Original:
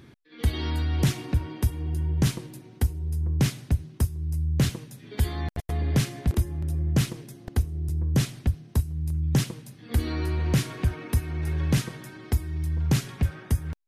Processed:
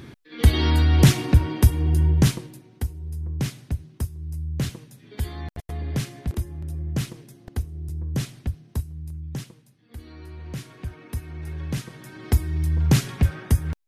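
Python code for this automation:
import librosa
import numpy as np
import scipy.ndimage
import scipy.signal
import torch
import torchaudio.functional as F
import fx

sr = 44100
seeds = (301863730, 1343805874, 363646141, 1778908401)

y = fx.gain(x, sr, db=fx.line((2.06, 8.5), (2.67, -3.5), (8.8, -3.5), (9.91, -16.0), (11.26, -5.5), (11.84, -5.5), (12.3, 5.0)))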